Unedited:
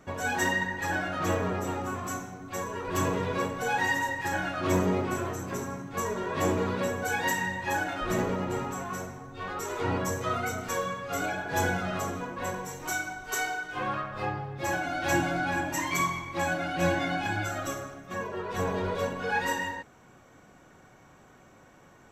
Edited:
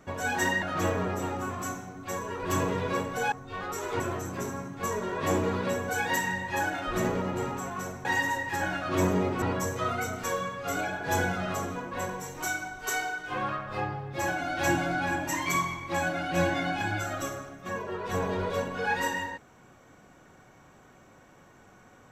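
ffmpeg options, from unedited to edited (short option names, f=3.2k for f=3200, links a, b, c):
-filter_complex "[0:a]asplit=6[a][b][c][d][e][f];[a]atrim=end=0.622[g];[b]atrim=start=1.068:end=3.772[h];[c]atrim=start=9.188:end=9.872[i];[d]atrim=start=5.138:end=9.192[j];[e]atrim=start=3.768:end=5.142[k];[f]atrim=start=9.868[l];[g][h]acrossfade=d=0.004:c1=hsin:c2=hsin[m];[m][i]acrossfade=d=0.004:c1=hsin:c2=hsin[n];[n][j]acrossfade=d=0.004:c1=hsin:c2=hsin[o];[o][k]acrossfade=d=0.004:c1=hsin:c2=hsin[p];[p][l]acrossfade=d=0.004:c1=hsin:c2=hsin"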